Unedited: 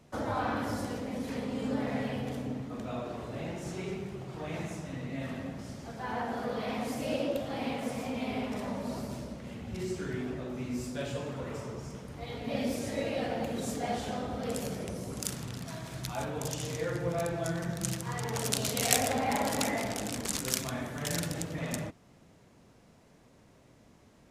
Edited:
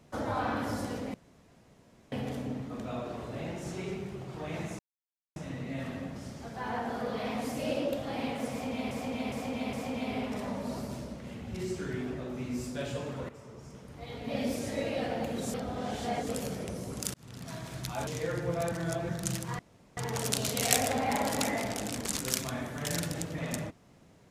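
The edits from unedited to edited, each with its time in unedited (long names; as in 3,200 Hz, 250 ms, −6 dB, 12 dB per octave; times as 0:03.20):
0:01.14–0:02.12: fill with room tone
0:04.79: splice in silence 0.57 s
0:07.93–0:08.34: repeat, 4 plays
0:11.49–0:12.65: fade in, from −13 dB
0:13.74–0:14.49: reverse
0:15.34–0:15.73: fade in
0:16.27–0:16.65: remove
0:17.30–0:17.67: reverse
0:18.17: splice in room tone 0.38 s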